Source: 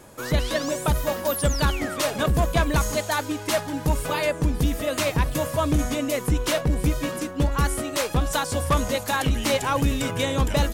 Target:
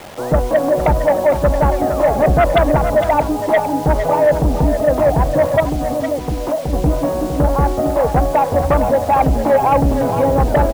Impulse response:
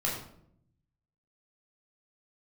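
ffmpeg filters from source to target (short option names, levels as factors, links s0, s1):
-filter_complex "[0:a]lowpass=f=750:t=q:w=4.4,asettb=1/sr,asplit=3[s0][s1][s2];[s0]atrim=end=5.604[s3];[s1]atrim=start=5.6:end=6.73,asetpts=PTS-STARTPTS,afade=t=in:d=0.004:c=qsin,afade=t=out:st=1.126:d=0.004:c=qsin,acompressor=threshold=0.0562:ratio=5[s4];[s2]atrim=start=6.726[s5];[s3][s4]acrossfade=d=0.004:c1=hsin:c2=qsin[s6];[s6][s5]acrossfade=d=0.004:c1=qsin:c2=hsin,acrusher=bits=6:mix=0:aa=0.000001,aeval=exprs='0.708*(cos(1*acos(clip(val(0)/0.708,-1,1)))-cos(1*PI/2))+0.251*(cos(5*acos(clip(val(0)/0.708,-1,1)))-cos(5*PI/2))':c=same,asplit=2[s7][s8];[s8]aecho=0:1:458:0.355[s9];[s7][s9]amix=inputs=2:normalize=0,volume=0.841"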